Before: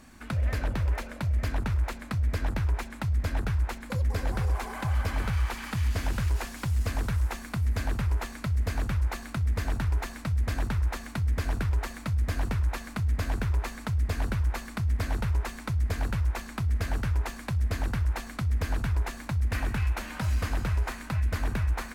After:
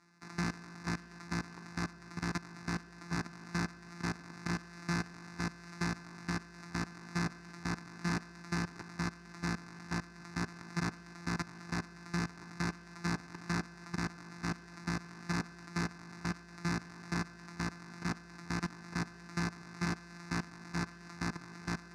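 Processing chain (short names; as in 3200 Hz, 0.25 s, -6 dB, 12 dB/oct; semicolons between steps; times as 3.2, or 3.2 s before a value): sample sorter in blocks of 256 samples; tone controls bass -11 dB, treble -13 dB; fixed phaser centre 1300 Hz, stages 4; on a send at -2.5 dB: reverb RT60 0.45 s, pre-delay 3 ms; on the sum: flange 1.7 Hz, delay 1 ms, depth 7.8 ms, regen +86%; level quantiser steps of 18 dB; Chebyshev band-pass 150–8700 Hz, order 2; bell 5000 Hz +14.5 dB 1.7 oct; gain +5 dB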